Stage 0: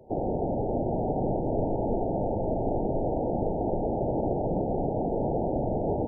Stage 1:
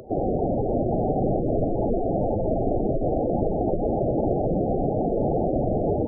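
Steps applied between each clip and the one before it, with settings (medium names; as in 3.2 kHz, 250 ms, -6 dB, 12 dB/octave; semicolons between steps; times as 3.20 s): spectral gate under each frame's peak -10 dB strong; upward compressor, threshold -43 dBFS; trim +5 dB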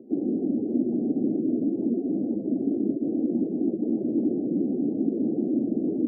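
Butterworth band-pass 270 Hz, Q 2.3; trim +5 dB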